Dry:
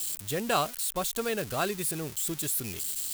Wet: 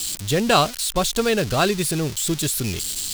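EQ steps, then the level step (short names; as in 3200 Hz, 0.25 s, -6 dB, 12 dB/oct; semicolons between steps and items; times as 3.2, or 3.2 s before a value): tilt -2 dB/oct; bell 4700 Hz +9.5 dB 1.9 oct; +8.0 dB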